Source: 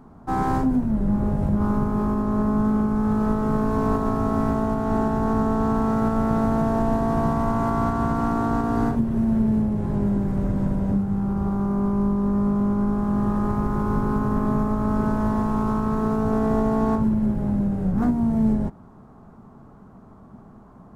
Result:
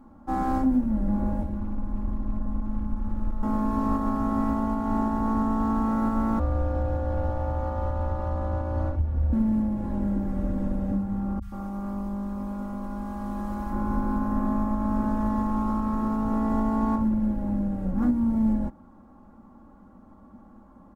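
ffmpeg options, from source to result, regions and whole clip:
-filter_complex "[0:a]asettb=1/sr,asplit=3[a][b][c];[a]atrim=end=1.424[d];[b]atrim=start=1.42:end=3.43,asetpts=PTS-STARTPTS,afade=t=in:d=0.004:c=qsin,afade=t=out:st=2.006:d=0.004:c=qsin,asubboost=boost=9.5:cutoff=100,acrossover=split=230|660[e][f][g];[e]acompressor=threshold=-21dB:ratio=4[h];[f]acompressor=threshold=-41dB:ratio=4[i];[g]acompressor=threshold=-45dB:ratio=4[j];[h][i][j]amix=inputs=3:normalize=0,aeval=exprs='clip(val(0),-1,0.0631)':c=same[k];[c]atrim=start=3.426[l];[d][k]acrossfade=d=0.004:c1=hsin:c2=qsin[m];[m][l]acrossfade=d=0.004:c1=qsin:c2=hsin,asettb=1/sr,asplit=3[n][o][p];[n]atrim=end=6.394[q];[o]atrim=start=6.39:end=9.33,asetpts=PTS-STARTPTS,afade=t=in:d=0.004:c=qsin,afade=t=out:st=2.936:d=0.004:c=qsin,lowpass=f=2k:p=1,aecho=1:1:3.7:0.37,atrim=end_sample=129654,afreqshift=-150[r];[p]atrim=start=9.326[s];[q][r]acrossfade=d=0.004:c1=hsin:c2=qsin[t];[t][s]acrossfade=d=0.004:c1=qsin:c2=hsin,asettb=1/sr,asplit=3[u][v][w];[u]atrim=end=11.394[x];[v]atrim=start=11.39:end=13.73,asetpts=PTS-STARTPTS,afade=t=in:d=0.004:c=qsin,afade=t=out:st=2.336:d=0.004:c=qsin,tiltshelf=f=1.2k:g=-5,acrossover=split=150|1700[y][z][aa];[aa]adelay=30[ab];[z]adelay=130[ac];[y][ac][ab]amix=inputs=3:normalize=0,atrim=end_sample=103194[ad];[w]atrim=start=13.726[ae];[x][ad]acrossfade=d=0.004:c1=hsin:c2=qsin[af];[af][ae]acrossfade=d=0.004:c1=qsin:c2=hsin,lowpass=f=1.8k:p=1,aemphasis=mode=production:type=50fm,aecho=1:1:3.6:0.99,volume=-6dB"

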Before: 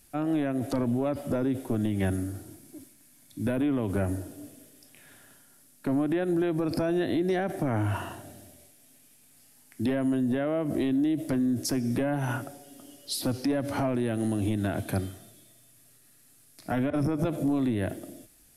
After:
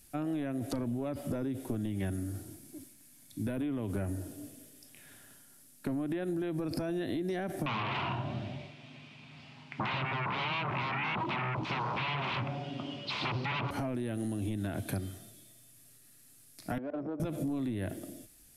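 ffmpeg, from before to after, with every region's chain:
-filter_complex "[0:a]asettb=1/sr,asplit=3[a][b][c];[a]atrim=end=7.664[d];[b]atrim=start=7.66:end=13.71,asetpts=PTS-STARTPTS,afade=t=in:d=0.004:c=qsin,afade=t=out:st=6.046:d=0.004:c=qsin,flanger=delay=6.3:depth=9.6:regen=89:speed=1:shape=sinusoidal,aeval=exprs='0.075*sin(PI/2*7.08*val(0)/0.075)':c=same,highpass=f=110:w=0.5412,highpass=f=110:w=1.3066,equalizer=f=130:t=q:w=4:g=9,equalizer=f=290:t=q:w=4:g=-6,equalizer=f=480:t=q:w=4:g=-8,equalizer=f=1k:t=q:w=4:g=7,equalizer=f=1.7k:t=q:w=4:g=-7,equalizer=f=2.5k:t=q:w=4:g=4,lowpass=f=3.4k:w=0.5412,lowpass=f=3.4k:w=1.3066[e];[c]atrim=start=13.706[f];[d][e]acrossfade=d=0.004:c1=hsin:c2=qsin[g];[g][f]acrossfade=d=0.004:c1=qsin:c2=hsin,asettb=1/sr,asplit=3[h][i][j];[h]atrim=end=16.784[k];[i]atrim=start=16.78:end=17.2,asetpts=PTS-STARTPTS,afade=t=in:d=0.004:c=qsin,afade=t=out:st=0.416:d=0.004:c=qsin,highpass=580,tiltshelf=f=850:g=6.5,adynamicsmooth=sensitivity=1:basefreq=1k[l];[j]atrim=start=17.196[m];[k][l]acrossfade=d=0.004:c1=hsin:c2=qsin[n];[n][m]acrossfade=d=0.004:c1=qsin:c2=hsin,equalizer=f=790:t=o:w=2.7:g=-4,acompressor=threshold=-31dB:ratio=6"

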